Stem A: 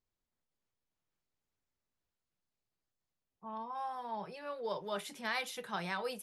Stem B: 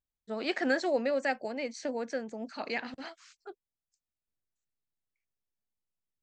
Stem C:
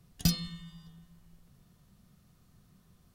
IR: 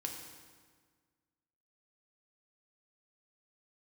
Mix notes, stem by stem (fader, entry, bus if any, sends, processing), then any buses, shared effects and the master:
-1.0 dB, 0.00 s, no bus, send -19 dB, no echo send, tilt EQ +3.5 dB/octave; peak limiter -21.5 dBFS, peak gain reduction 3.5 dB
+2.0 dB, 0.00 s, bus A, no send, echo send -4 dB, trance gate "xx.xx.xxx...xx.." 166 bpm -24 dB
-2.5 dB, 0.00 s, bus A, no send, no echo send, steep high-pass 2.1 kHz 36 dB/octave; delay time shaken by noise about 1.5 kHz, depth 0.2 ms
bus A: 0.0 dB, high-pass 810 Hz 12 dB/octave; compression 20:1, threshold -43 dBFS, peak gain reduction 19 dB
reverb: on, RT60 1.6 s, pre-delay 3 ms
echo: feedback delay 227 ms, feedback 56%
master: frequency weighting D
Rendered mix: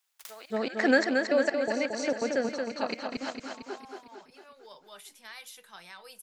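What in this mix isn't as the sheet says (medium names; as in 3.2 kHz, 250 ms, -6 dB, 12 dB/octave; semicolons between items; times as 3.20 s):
stem A -1.0 dB -> -11.5 dB; stem B +2.0 dB -> +10.0 dB; master: missing frequency weighting D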